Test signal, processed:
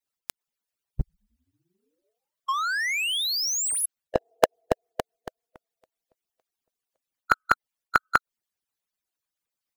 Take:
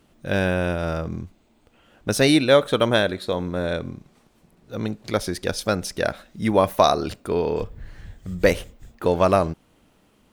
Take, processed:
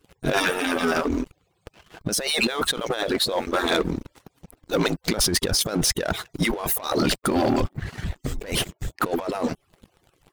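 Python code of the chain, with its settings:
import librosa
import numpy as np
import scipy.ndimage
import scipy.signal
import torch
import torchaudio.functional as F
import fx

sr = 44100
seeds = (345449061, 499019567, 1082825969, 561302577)

y = fx.hpss_only(x, sr, part='percussive')
y = fx.over_compress(y, sr, threshold_db=-33.0, ratio=-1.0)
y = fx.leveller(y, sr, passes=3)
y = F.gain(torch.from_numpy(y), -1.0).numpy()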